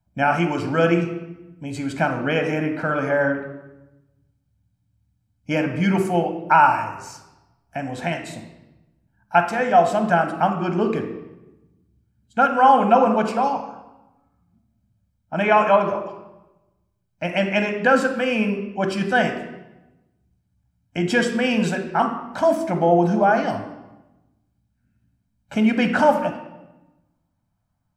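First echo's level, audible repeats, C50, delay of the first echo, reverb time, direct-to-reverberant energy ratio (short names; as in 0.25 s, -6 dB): none, none, 8.0 dB, none, 1.0 s, 5.5 dB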